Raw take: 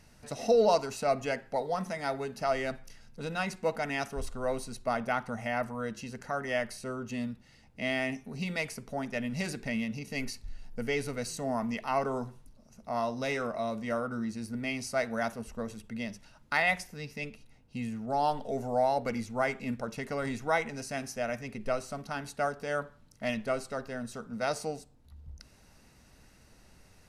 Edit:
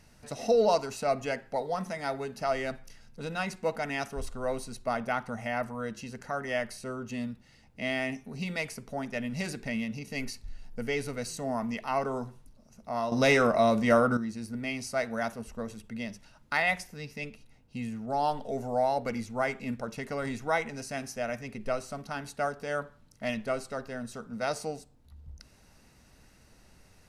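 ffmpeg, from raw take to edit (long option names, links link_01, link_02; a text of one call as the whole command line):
ffmpeg -i in.wav -filter_complex "[0:a]asplit=3[link_01][link_02][link_03];[link_01]atrim=end=13.122[link_04];[link_02]atrim=start=13.118:end=14.172,asetpts=PTS-STARTPTS,volume=10dB[link_05];[link_03]atrim=start=14.168[link_06];[link_04][link_05]acrossfade=duration=0.004:curve1=hsin:curve2=hsin[link_07];[link_07][link_06]acrossfade=duration=0.004:curve1=hsin:curve2=hsin" out.wav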